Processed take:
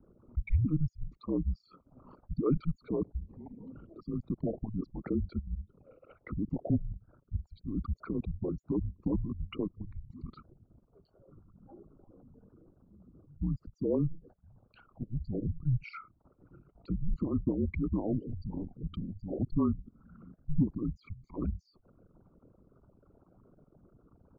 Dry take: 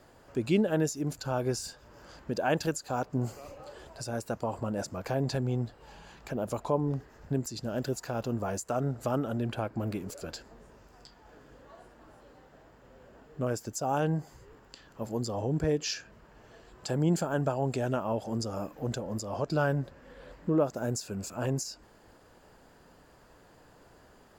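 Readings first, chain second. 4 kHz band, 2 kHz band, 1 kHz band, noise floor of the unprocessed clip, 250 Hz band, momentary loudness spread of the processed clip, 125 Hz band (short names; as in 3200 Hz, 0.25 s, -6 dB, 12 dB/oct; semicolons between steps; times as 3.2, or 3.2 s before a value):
under -15 dB, -14.5 dB, -15.5 dB, -58 dBFS, -1.0 dB, 16 LU, -1.5 dB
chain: formant sharpening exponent 3; mistuned SSB -320 Hz 300–3000 Hz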